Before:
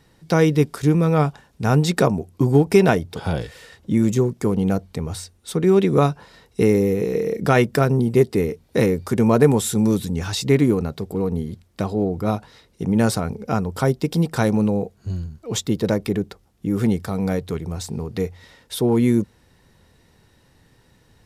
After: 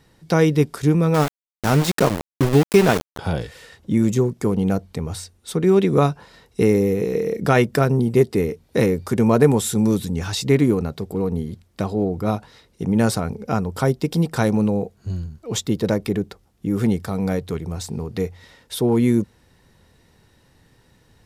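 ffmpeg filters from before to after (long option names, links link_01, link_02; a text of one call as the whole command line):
ffmpeg -i in.wav -filter_complex "[0:a]asettb=1/sr,asplit=3[link_01][link_02][link_03];[link_01]atrim=end=1.144[link_04];[link_02]atrim=start=1.14:end=3.19,asetpts=PTS-STARTPTS,afade=type=in:duration=0.004:curve=qsin,afade=type=out:start_time=2.046:duration=0.004:curve=qsin,aeval=exprs='val(0)*gte(abs(val(0)),0.112)':channel_layout=same[link_05];[link_03]atrim=start=3.186[link_06];[link_04][link_05]acrossfade=duration=0.004:curve1=hsin:curve2=qsin[link_07];[link_07][link_06]acrossfade=duration=0.004:curve1=qsin:curve2=hsin" out.wav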